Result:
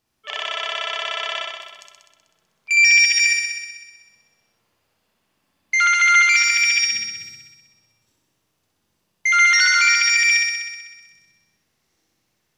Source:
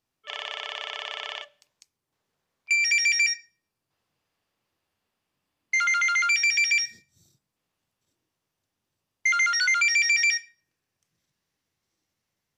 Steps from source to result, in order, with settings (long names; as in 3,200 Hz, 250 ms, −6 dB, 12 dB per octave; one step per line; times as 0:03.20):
brickwall limiter −19 dBFS, peak gain reduction 6 dB
flutter between parallel walls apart 10.8 metres, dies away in 1.3 s
convolution reverb RT60 1.5 s, pre-delay 5 ms, DRR 13.5 dB
level +7 dB